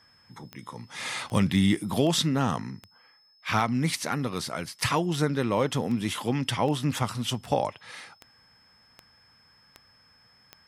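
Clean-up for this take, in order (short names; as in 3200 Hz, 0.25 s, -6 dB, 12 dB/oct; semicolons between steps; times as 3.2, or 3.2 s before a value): de-click; notch 5200 Hz, Q 30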